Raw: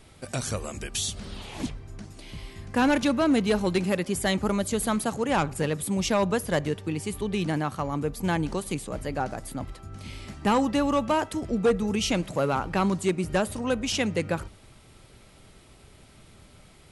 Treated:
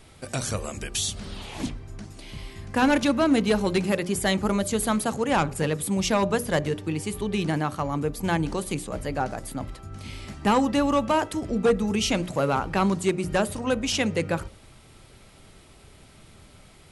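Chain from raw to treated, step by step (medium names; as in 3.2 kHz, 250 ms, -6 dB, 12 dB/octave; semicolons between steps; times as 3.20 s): hum notches 60/120/180/240/300/360/420/480/540/600 Hz; trim +2 dB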